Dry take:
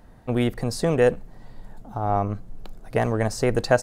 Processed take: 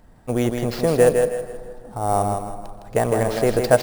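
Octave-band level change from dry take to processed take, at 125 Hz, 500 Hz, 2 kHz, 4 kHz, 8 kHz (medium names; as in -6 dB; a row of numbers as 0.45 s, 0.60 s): +0.5 dB, +4.5 dB, +0.5 dB, +1.0 dB, +5.5 dB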